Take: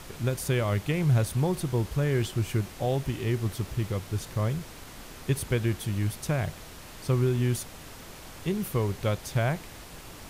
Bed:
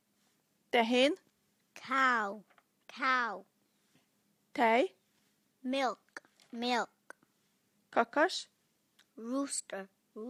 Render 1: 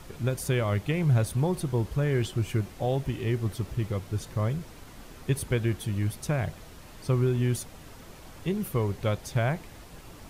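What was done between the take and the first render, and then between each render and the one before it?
denoiser 6 dB, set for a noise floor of -45 dBFS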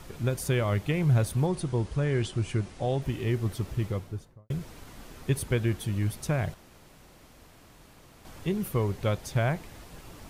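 1.46–3.02 elliptic low-pass 10000 Hz; 3.83–4.5 studio fade out; 6.54–8.25 room tone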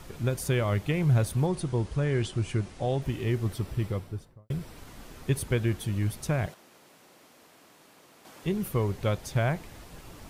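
3.54–4.78 notch 6600 Hz, Q 10; 6.46–8.44 HPF 250 Hz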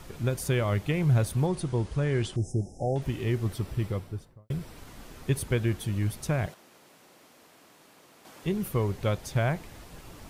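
2.36–2.96 brick-wall FIR band-stop 870–5000 Hz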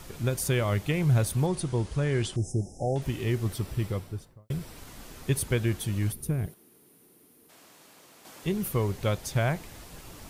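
6.12–7.5 spectral gain 480–8700 Hz -13 dB; high shelf 4100 Hz +6 dB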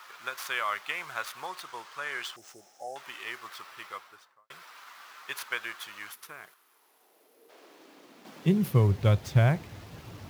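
median filter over 5 samples; high-pass sweep 1200 Hz -> 94 Hz, 6.58–9.01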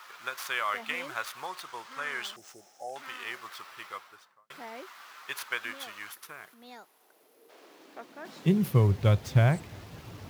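add bed -16.5 dB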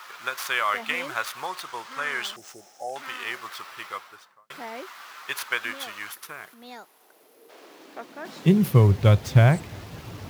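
gain +6 dB

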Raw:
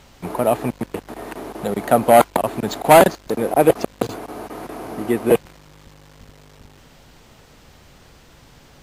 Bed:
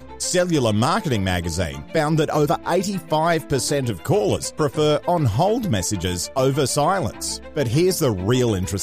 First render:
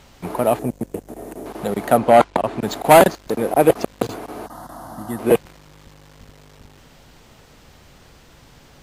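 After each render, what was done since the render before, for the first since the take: 0.59–1.46 band shelf 2100 Hz -11 dB 2.8 oct; 1.97–2.62 air absorption 75 m; 4.46–5.19 fixed phaser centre 1000 Hz, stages 4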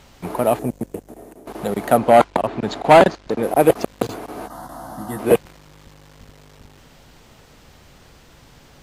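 0.78–1.47 fade out, to -13 dB; 2.47–3.43 LPF 5200 Hz; 4.36–5.34 doubler 15 ms -5.5 dB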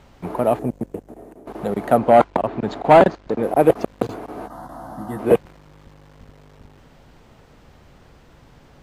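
high shelf 2700 Hz -11.5 dB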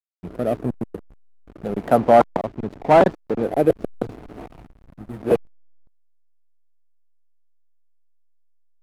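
rotary speaker horn 0.85 Hz; backlash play -27 dBFS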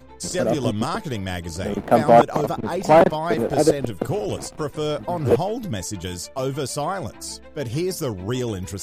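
add bed -6.5 dB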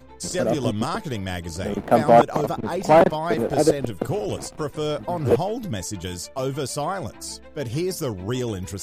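gain -1 dB

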